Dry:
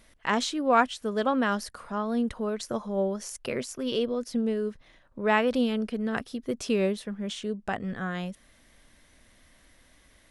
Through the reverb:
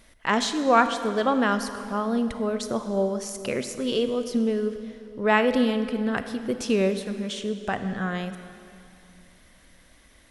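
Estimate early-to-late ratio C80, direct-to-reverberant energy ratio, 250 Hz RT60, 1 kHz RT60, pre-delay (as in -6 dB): 10.5 dB, 9.5 dB, 2.7 s, 2.6 s, 31 ms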